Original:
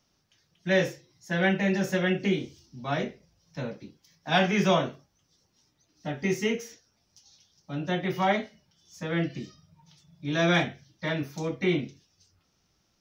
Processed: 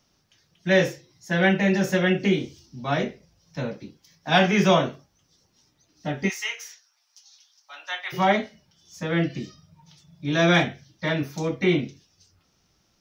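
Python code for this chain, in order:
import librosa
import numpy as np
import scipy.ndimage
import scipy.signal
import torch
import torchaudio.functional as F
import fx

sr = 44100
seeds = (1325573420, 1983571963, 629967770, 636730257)

y = fx.highpass(x, sr, hz=910.0, slope=24, at=(6.28, 8.12), fade=0.02)
y = y * librosa.db_to_amplitude(4.5)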